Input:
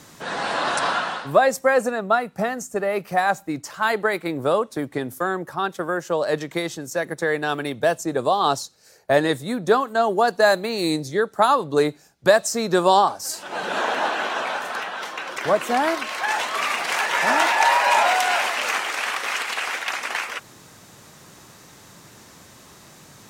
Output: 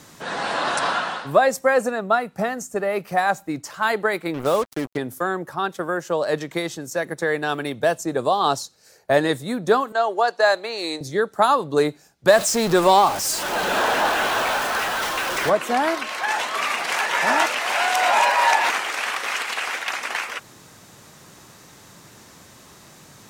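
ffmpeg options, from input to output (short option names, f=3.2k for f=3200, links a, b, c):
-filter_complex "[0:a]asettb=1/sr,asplit=3[a][b][c];[a]atrim=end=4.344[d];[b]atrim=start=4.34:end=4.97,asetpts=PTS-STARTPTS,afade=t=in:d=0.004:c=qsin,afade=t=out:st=0.626:d=0.004:c=qsin,acrusher=bits=4:mix=0:aa=0.5[e];[c]atrim=start=4.966[f];[d][e]acrossfade=d=0.004:c1=hsin:c2=qsin[g];[g][f]acrossfade=d=0.004:c1=qsin:c2=hsin,asettb=1/sr,asplit=3[h][i][j];[h]atrim=end=9.924[k];[i]atrim=start=9.92:end=11.01,asetpts=PTS-STARTPTS,afade=t=in:d=0.004:c=qsin,afade=t=out:st=1.086:d=0.004:c=qsin,acrossover=split=390 7600:gain=0.0891 1 0.178[l][m][n];[l][m][n]amix=inputs=3:normalize=0[o];[j]atrim=start=11.006[p];[k][o]acrossfade=d=0.004:c1=hsin:c2=qsin[q];[q][p]acrossfade=d=0.004:c1=qsin:c2=hsin,asettb=1/sr,asplit=3[r][s][t];[r]atrim=end=12.284[u];[s]atrim=start=12.28:end=15.5,asetpts=PTS-STARTPTS,afade=t=in:d=0.004:c=qsin,afade=t=out:st=3.216:d=0.004:c=qsin,aeval=exprs='val(0)+0.5*0.0708*sgn(val(0))':c=same[v];[t]atrim=start=15.496[w];[u][v]acrossfade=d=0.004:c1=hsin:c2=qsin[x];[x][w]acrossfade=d=0.004:c1=qsin:c2=hsin,asplit=3[y][z][aa];[y]atrim=end=17.462[ab];[z]atrim=start=17.458:end=18.702,asetpts=PTS-STARTPTS,areverse[ac];[aa]atrim=start=18.698[ad];[ab][ac]acrossfade=d=0.004:c1=hsin:c2=hsin[ae];[ae][ad]acrossfade=d=0.004:c1=hsin:c2=hsin"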